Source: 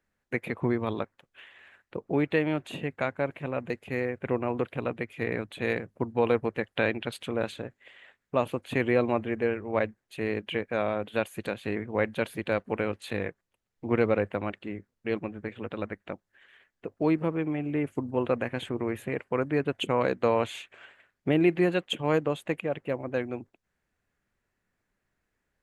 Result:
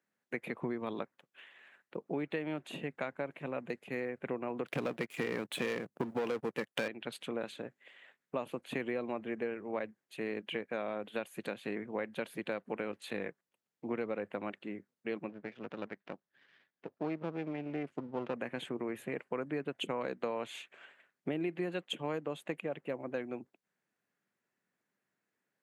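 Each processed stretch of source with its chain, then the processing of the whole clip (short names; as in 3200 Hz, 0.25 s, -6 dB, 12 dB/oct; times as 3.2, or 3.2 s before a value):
4.66–6.88 high shelf 8200 Hz +9.5 dB + sample leveller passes 3
15.29–18.34 half-wave gain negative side -12 dB + LPF 4900 Hz
whole clip: HPF 150 Hz 24 dB/oct; compressor, threshold -27 dBFS; gain -5 dB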